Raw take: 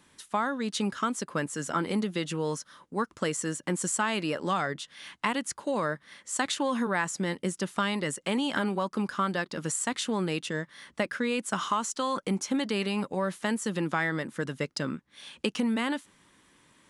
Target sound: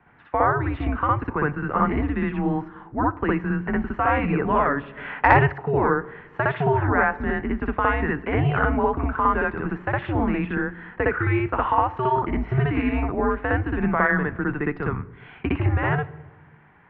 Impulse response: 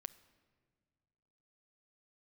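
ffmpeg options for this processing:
-filter_complex "[0:a]highpass=frequency=230:width_type=q:width=0.5412,highpass=frequency=230:width_type=q:width=1.307,lowpass=frequency=2300:width_type=q:width=0.5176,lowpass=frequency=2300:width_type=q:width=0.7071,lowpass=frequency=2300:width_type=q:width=1.932,afreqshift=-140,asplit=2[link_01][link_02];[1:a]atrim=start_sample=2205,asetrate=74970,aresample=44100,adelay=61[link_03];[link_02][link_03]afir=irnorm=-1:irlink=0,volume=11.5dB[link_04];[link_01][link_04]amix=inputs=2:normalize=0,asplit=3[link_05][link_06][link_07];[link_05]afade=type=out:start_time=4.96:duration=0.02[link_08];[link_06]acontrast=64,afade=type=in:start_time=4.96:duration=0.02,afade=type=out:start_time=5.52:duration=0.02[link_09];[link_07]afade=type=in:start_time=5.52:duration=0.02[link_10];[link_08][link_09][link_10]amix=inputs=3:normalize=0,volume=5dB"

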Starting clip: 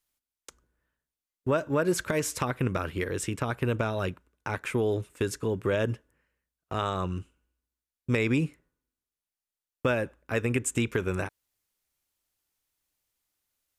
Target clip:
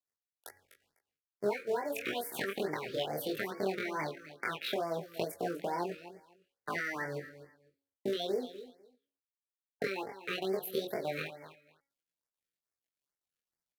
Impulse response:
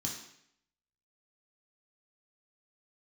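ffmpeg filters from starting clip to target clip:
-filter_complex "[0:a]equalizer=frequency=125:width_type=o:width=1:gain=-6,equalizer=frequency=250:width_type=o:width=1:gain=12,equalizer=frequency=1000:width_type=o:width=1:gain=10,equalizer=frequency=2000:width_type=o:width=1:gain=7,equalizer=frequency=8000:width_type=o:width=1:gain=8,acrusher=bits=4:mode=log:mix=0:aa=0.000001,acompressor=threshold=-27dB:ratio=10,highpass=frequency=70:width=0.5412,highpass=frequency=70:width=1.3066,bandreject=frequency=174.8:width_type=h:width=4,bandreject=frequency=349.6:width_type=h:width=4,bandreject=frequency=524.4:width_type=h:width=4,bandreject=frequency=699.2:width_type=h:width=4,bandreject=frequency=874:width_type=h:width=4,bandreject=frequency=1048.8:width_type=h:width=4,bandreject=frequency=1223.6:width_type=h:width=4,bandreject=frequency=1398.4:width_type=h:width=4,bandreject=frequency=1573.2:width_type=h:width=4,bandreject=frequency=1748:width_type=h:width=4,bandreject=frequency=1922.8:width_type=h:width=4,bandreject=frequency=2097.6:width_type=h:width=4,acrusher=bits=10:mix=0:aa=0.000001,highshelf=frequency=3500:gain=-6.5,asetrate=70004,aresample=44100,atempo=0.629961,flanger=delay=22.5:depth=3.6:speed=0.15,asplit=2[link_01][link_02];[link_02]aecho=0:1:250|500:0.2|0.0359[link_03];[link_01][link_03]amix=inputs=2:normalize=0,afftfilt=real='re*(1-between(b*sr/1024,800*pow(3300/800,0.5+0.5*sin(2*PI*2.3*pts/sr))/1.41,800*pow(3300/800,0.5+0.5*sin(2*PI*2.3*pts/sr))*1.41))':imag='im*(1-between(b*sr/1024,800*pow(3300/800,0.5+0.5*sin(2*PI*2.3*pts/sr))/1.41,800*pow(3300/800,0.5+0.5*sin(2*PI*2.3*pts/sr))*1.41))':win_size=1024:overlap=0.75"

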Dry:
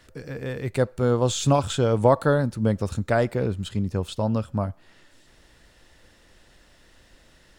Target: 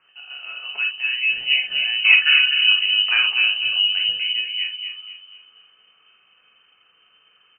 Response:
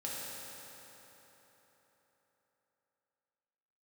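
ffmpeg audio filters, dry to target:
-filter_complex "[0:a]asettb=1/sr,asplit=3[link_01][link_02][link_03];[link_01]atrim=end=2.044[link_04];[link_02]atrim=start=2.04:end=4.13,asetpts=PTS-STARTPTS,afade=type=in:duration=0.004:curve=qsin,afade=type=out:start_time=2.086:duration=0.004:curve=qsin,acontrast=69[link_05];[link_03]atrim=start=4.126[link_06];[link_04][link_05]acrossfade=duration=0.004:curve1=hsin:curve2=qsin[link_07];[link_07][link_06]acrossfade=duration=0.004:curve1=qsin:curve2=hsin,asplit=2[link_08][link_09];[link_09]adelay=247,lowpass=frequency=870:poles=1,volume=-4dB,asplit=2[link_10][link_11];[link_11]adelay=247,lowpass=frequency=870:poles=1,volume=0.43,asplit=2[link_12][link_13];[link_13]adelay=247,lowpass=frequency=870:poles=1,volume=0.43,asplit=2[link_14][link_15];[link_15]adelay=247,lowpass=frequency=870:poles=1,volume=0.43,asplit=2[link_16][link_17];[link_17]adelay=247,lowpass=frequency=870:poles=1,volume=0.43[link_18];[link_08][link_10][link_12][link_14][link_16][link_18]amix=inputs=6:normalize=0[link_19];[1:a]atrim=start_sample=2205,atrim=end_sample=3528[link_20];[link_19][link_20]afir=irnorm=-1:irlink=0,lowpass=frequency=2600:width_type=q:width=0.5098,lowpass=frequency=2600:width_type=q:width=0.6013,lowpass=frequency=2600:width_type=q:width=0.9,lowpass=frequency=2600:width_type=q:width=2.563,afreqshift=-3100,volume=-1.5dB"

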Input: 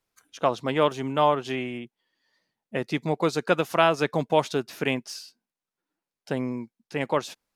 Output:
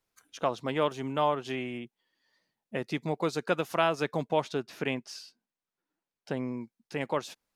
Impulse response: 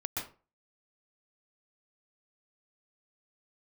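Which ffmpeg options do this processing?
-filter_complex "[0:a]asettb=1/sr,asplit=3[link_01][link_02][link_03];[link_01]atrim=end=4.274[link_04];[link_02]atrim=start=4.27:end=6.61,asetpts=PTS-STARTPTS,afade=type=in:duration=0.004:curve=qsin,afade=type=out:start_time=2.336:duration=0.004:curve=qsin,highshelf=frequency=8500:gain=-11[link_05];[link_03]atrim=start=6.606[link_06];[link_04][link_05]acrossfade=duration=0.004:curve1=hsin:curve2=qsin[link_07];[link_07][link_06]acrossfade=duration=0.004:curve1=qsin:curve2=hsin,asplit=2[link_08][link_09];[link_09]acompressor=threshold=-34dB:ratio=6,volume=-1.5dB[link_10];[link_08][link_10]amix=inputs=2:normalize=0,volume=-7dB"

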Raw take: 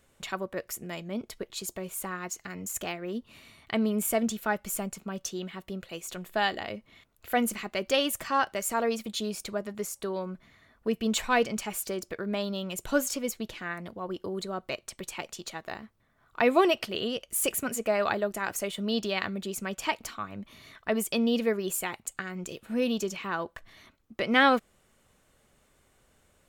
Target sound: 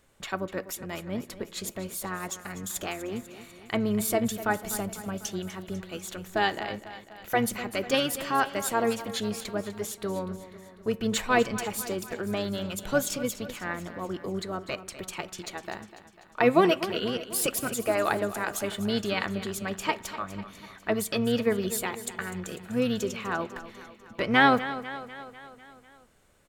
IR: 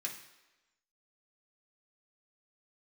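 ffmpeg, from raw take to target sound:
-filter_complex "[0:a]aecho=1:1:248|496|744|992|1240|1488:0.2|0.118|0.0695|0.041|0.0242|0.0143,asplit=2[link_01][link_02];[1:a]atrim=start_sample=2205,lowpass=2000[link_03];[link_02][link_03]afir=irnorm=-1:irlink=0,volume=-10dB[link_04];[link_01][link_04]amix=inputs=2:normalize=0,asplit=2[link_05][link_06];[link_06]asetrate=22050,aresample=44100,atempo=2,volume=-10dB[link_07];[link_05][link_07]amix=inputs=2:normalize=0"

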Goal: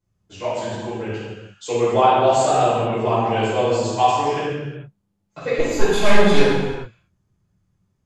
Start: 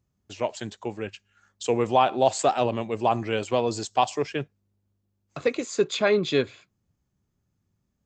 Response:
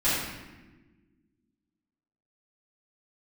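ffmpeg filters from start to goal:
-filter_complex "[0:a]asettb=1/sr,asplit=3[link_01][link_02][link_03];[link_01]atrim=end=5.574[link_04];[link_02]atrim=start=5.57:end=6.4,asetpts=PTS-STARTPTS,afade=type=in:duration=0.004:curve=qsin,afade=type=out:start_time=0.826:duration=0.004:curve=qsin,aeval=exprs='0.335*(cos(1*acos(clip(val(0)/0.335,-1,1)))-cos(1*PI/2))+0.0668*(cos(6*acos(clip(val(0)/0.335,-1,1)))-cos(6*PI/2))':channel_layout=same[link_05];[link_03]atrim=start=6.396[link_06];[link_04][link_05]acrossfade=duration=0.004:curve1=hsin:curve2=qsin[link_07];[link_07][link_06]acrossfade=duration=0.004:curve1=qsin:curve2=hsin[link_08];[1:a]atrim=start_sample=2205,afade=type=out:start_time=0.33:duration=0.01,atrim=end_sample=14994,asetrate=26901,aresample=44100[link_09];[link_08][link_09]afir=irnorm=-1:irlink=0,volume=-11.5dB"

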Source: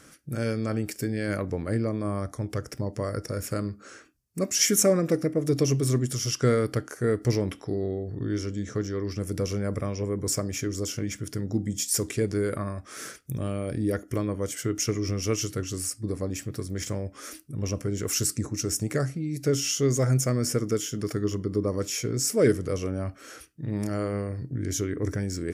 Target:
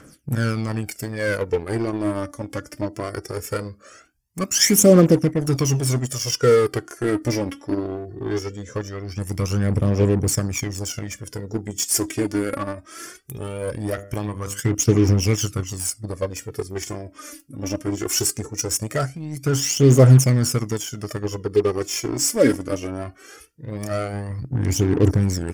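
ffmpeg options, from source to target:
ffmpeg -i in.wav -filter_complex "[0:a]aphaser=in_gain=1:out_gain=1:delay=3.7:decay=0.69:speed=0.2:type=triangular,asettb=1/sr,asplit=3[link_01][link_02][link_03];[link_01]atrim=end=13.904[link_04];[link_02]atrim=start=13.9:end=14.6,asetpts=PTS-STARTPTS,afade=type=in:duration=0.004:curve=qsin,afade=type=out:start_time=0.696:duration=0.004:curve=qsin,bandreject=frequency=99.67:width_type=h:width=4,bandreject=frequency=199.34:width_type=h:width=4,bandreject=frequency=299.01:width_type=h:width=4,bandreject=frequency=398.68:width_type=h:width=4,bandreject=frequency=498.35:width_type=h:width=4,bandreject=frequency=598.02:width_type=h:width=4,bandreject=frequency=697.69:width_type=h:width=4,bandreject=frequency=797.36:width_type=h:width=4,bandreject=frequency=897.03:width_type=h:width=4,bandreject=frequency=996.7:width_type=h:width=4,bandreject=frequency=1096.37:width_type=h:width=4,bandreject=frequency=1196.04:width_type=h:width=4,bandreject=frequency=1295.71:width_type=h:width=4,bandreject=frequency=1395.38:width_type=h:width=4,bandreject=frequency=1495.05:width_type=h:width=4,bandreject=frequency=1594.72:width_type=h:width=4,bandreject=frequency=1694.39:width_type=h:width=4,bandreject=frequency=1794.06:width_type=h:width=4,bandreject=frequency=1893.73:width_type=h:width=4,bandreject=frequency=1993.4:width_type=h:width=4,bandreject=frequency=2093.07:width_type=h:width=4,bandreject=frequency=2192.74:width_type=h:width=4,bandreject=frequency=2292.41:width_type=h:width=4,bandreject=frequency=2392.08:width_type=h:width=4,bandreject=frequency=2491.75:width_type=h:width=4,bandreject=frequency=2591.42:width_type=h:width=4,bandreject=frequency=2691.09:width_type=h:width=4,bandreject=frequency=2790.76:width_type=h:width=4,bandreject=frequency=2890.43:width_type=h:width=4,bandreject=frequency=2990.1:width_type=h:width=4,bandreject=frequency=3089.77:width_type=h:width=4,bandreject=frequency=3189.44:width_type=h:width=4,bandreject=frequency=3289.11:width_type=h:width=4[link_05];[link_03]atrim=start=14.596[link_06];[link_04][link_05]acrossfade=duration=0.004:curve1=hsin:curve2=qsin[link_07];[link_07][link_06]acrossfade=duration=0.004:curve1=qsin:curve2=hsin,asplit=2[link_08][link_09];[link_09]acrusher=bits=3:mix=0:aa=0.5,volume=-4.5dB[link_10];[link_08][link_10]amix=inputs=2:normalize=0,bandreject=frequency=3900:width=9.8,volume=-1dB" out.wav

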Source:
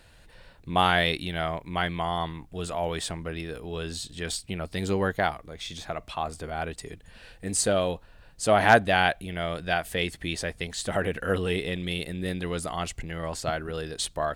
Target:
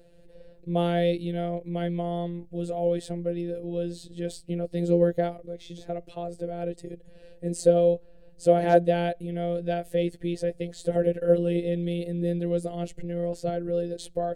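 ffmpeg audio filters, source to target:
ffmpeg -i in.wav -af "afftfilt=real='hypot(re,im)*cos(PI*b)':imag='0':win_size=1024:overlap=0.75,lowshelf=frequency=720:width_type=q:width=3:gain=12.5,volume=-8dB" out.wav

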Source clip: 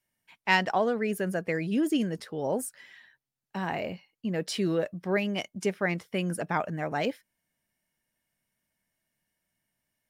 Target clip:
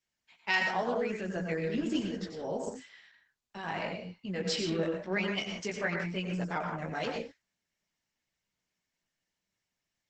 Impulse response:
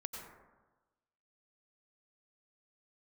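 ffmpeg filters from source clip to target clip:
-filter_complex "[0:a]asettb=1/sr,asplit=3[link_01][link_02][link_03];[link_01]atrim=end=3.584[link_04];[link_02]atrim=start=3.58:end=5.87,asetpts=PTS-STARTPTS,afade=type=in:duration=0.004:curve=qsin,afade=type=out:start_time=2.286:duration=0.004:curve=qsin,equalizer=frequency=2200:width_type=o:width=2.8:gain=3.5[link_05];[link_03]atrim=start=5.866[link_06];[link_04][link_05]acrossfade=duration=0.004:curve1=hsin:curve2=qsin[link_07];[link_07][link_06]acrossfade=duration=0.004:curve1=qsin:curve2=hsin,flanger=delay=15.5:depth=3.2:speed=0.95,equalizer=frequency=4600:width_type=o:width=1.6:gain=7[link_08];[1:a]atrim=start_sample=2205,afade=type=out:start_time=0.24:duration=0.01,atrim=end_sample=11025[link_09];[link_08][link_09]afir=irnorm=-1:irlink=0" -ar 48000 -c:a libopus -b:a 12k

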